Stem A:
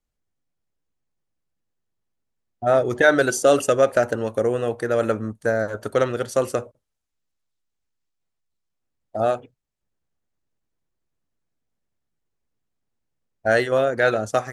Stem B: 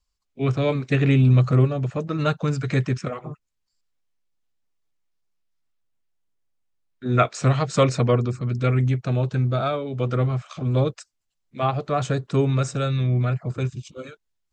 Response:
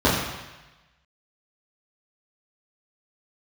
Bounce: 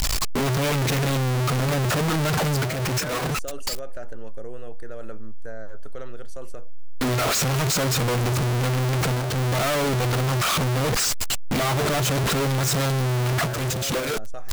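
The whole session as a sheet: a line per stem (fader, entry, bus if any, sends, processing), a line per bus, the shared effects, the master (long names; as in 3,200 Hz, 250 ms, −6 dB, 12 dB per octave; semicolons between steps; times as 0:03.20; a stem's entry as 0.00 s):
−13.0 dB, 0.00 s, no send, no processing
+2.0 dB, 0.00 s, no send, sign of each sample alone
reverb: not used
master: brickwall limiter −22 dBFS, peak gain reduction 9.5 dB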